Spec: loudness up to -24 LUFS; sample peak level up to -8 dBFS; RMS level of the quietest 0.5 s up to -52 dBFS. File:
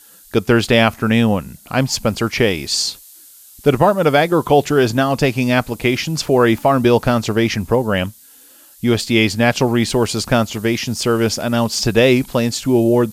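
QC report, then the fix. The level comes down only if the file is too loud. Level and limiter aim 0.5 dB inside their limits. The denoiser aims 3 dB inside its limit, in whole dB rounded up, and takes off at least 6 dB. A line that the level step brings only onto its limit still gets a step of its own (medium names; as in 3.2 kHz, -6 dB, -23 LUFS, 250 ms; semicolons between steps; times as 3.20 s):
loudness -16.5 LUFS: fail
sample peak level -1.5 dBFS: fail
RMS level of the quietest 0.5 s -45 dBFS: fail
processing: trim -8 dB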